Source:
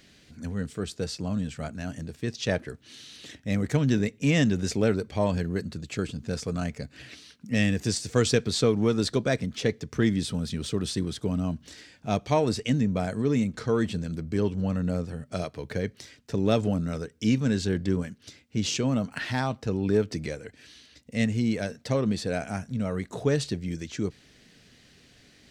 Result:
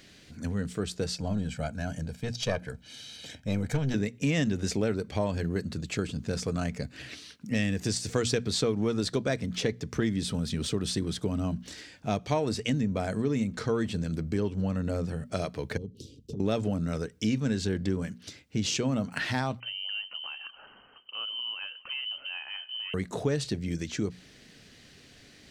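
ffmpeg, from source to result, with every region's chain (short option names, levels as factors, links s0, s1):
-filter_complex "[0:a]asettb=1/sr,asplit=3[s0][s1][s2];[s0]atrim=end=1.164[s3];[s1]atrim=start=1.16:end=3.94,asetpts=PTS-STARTPTS,afade=t=in:d=0.004:c=qsin,afade=t=out:st=2.776:d=0.004:c=qsin,equalizer=f=460:t=o:w=0.36:g=8,aecho=1:1:1.3:0.75,atrim=end_sample=122598,aeval=exprs='(tanh(5.01*val(0)+0.65)-tanh(0.65))/5.01':c=same[s4];[s2]atrim=start=3.936[s5];[s3][s4]acrossfade=d=0.004:c1=hsin:c2=qsin[s6];[s6][s5]acrossfade=d=0.004:c1=qsin:c2=hsin,asettb=1/sr,asplit=3[s7][s8][s9];[s7]atrim=end=15.774[s10];[s8]atrim=start=15.77:end=16.4,asetpts=PTS-STARTPTS,afade=t=in:d=0.004:c=qsin,afade=t=out:st=0.626:d=0.004:c=qsin,asuperstop=centerf=1200:order=12:qfactor=0.5,tiltshelf=f=860:g=8.5,acompressor=threshold=0.0178:ratio=10:attack=3.2:release=140:knee=1:detection=peak[s11];[s9]atrim=start=16.396[s12];[s10][s11]acrossfade=d=0.004:c1=hsin:c2=qsin[s13];[s13][s12]acrossfade=d=0.004:c1=qsin:c2=hsin,asettb=1/sr,asplit=3[s14][s15][s16];[s14]atrim=end=19.604[s17];[s15]atrim=start=19.6:end=22.94,asetpts=PTS-STARTPTS,afade=t=in:d=0.004:c=qsin,afade=t=out:st=3.336:d=0.004:c=qsin,acompressor=threshold=0.00891:ratio=2.5:attack=3.2:release=140:knee=1:detection=peak,aecho=1:1:269:0.0841,atrim=end_sample=147294,lowpass=f=2700:t=q:w=0.5098,lowpass=f=2700:t=q:w=0.6013,lowpass=f=2700:t=q:w=0.9,lowpass=f=2700:t=q:w=2.563,afreqshift=-3200[s18];[s16]atrim=start=22.936[s19];[s17][s18]acrossfade=d=0.004:c1=hsin:c2=qsin[s20];[s20][s19]acrossfade=d=0.004:c1=qsin:c2=hsin,bandreject=f=60:t=h:w=6,bandreject=f=120:t=h:w=6,bandreject=f=180:t=h:w=6,bandreject=f=240:t=h:w=6,acompressor=threshold=0.0355:ratio=2.5,volume=1.33"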